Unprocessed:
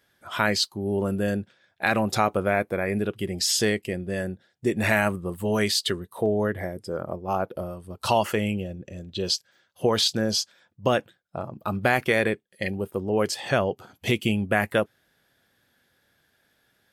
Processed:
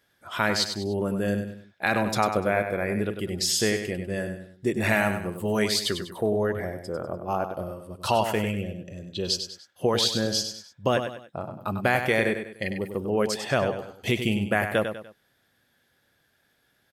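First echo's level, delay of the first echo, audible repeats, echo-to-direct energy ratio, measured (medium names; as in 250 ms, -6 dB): -8.0 dB, 98 ms, 3, -7.5 dB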